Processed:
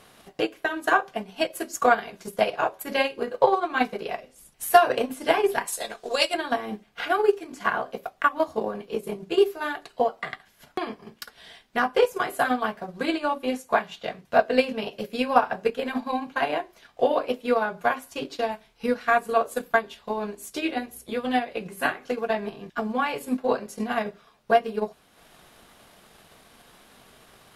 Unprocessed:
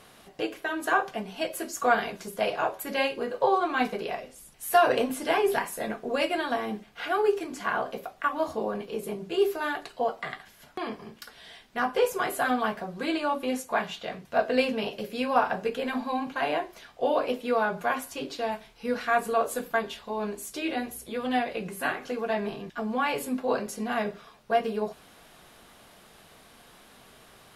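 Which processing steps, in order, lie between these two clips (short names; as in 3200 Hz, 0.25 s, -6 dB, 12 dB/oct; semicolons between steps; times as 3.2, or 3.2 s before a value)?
5.67–6.34 graphic EQ 125/250/2000/4000/8000 Hz -10/-11/-3/+10/+10 dB; transient shaper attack +7 dB, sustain -6 dB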